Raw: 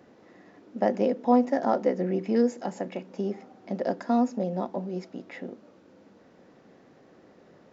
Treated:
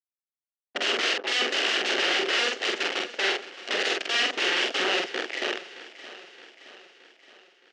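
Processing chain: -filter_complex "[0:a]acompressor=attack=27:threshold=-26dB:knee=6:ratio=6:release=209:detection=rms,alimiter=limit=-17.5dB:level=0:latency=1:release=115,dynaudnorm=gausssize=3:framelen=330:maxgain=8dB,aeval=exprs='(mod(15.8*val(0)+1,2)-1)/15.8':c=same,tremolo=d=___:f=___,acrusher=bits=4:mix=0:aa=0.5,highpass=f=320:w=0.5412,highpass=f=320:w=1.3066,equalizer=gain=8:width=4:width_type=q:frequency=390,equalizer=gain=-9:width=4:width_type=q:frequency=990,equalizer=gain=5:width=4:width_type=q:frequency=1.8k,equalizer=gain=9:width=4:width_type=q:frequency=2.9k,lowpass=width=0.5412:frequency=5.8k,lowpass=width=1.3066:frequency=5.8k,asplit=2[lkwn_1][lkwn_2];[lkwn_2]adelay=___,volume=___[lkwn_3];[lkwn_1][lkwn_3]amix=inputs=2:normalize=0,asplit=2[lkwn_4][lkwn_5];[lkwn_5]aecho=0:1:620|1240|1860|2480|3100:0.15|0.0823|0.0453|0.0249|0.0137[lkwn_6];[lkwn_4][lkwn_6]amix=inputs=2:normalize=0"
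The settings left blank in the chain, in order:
0.182, 180, 46, -2dB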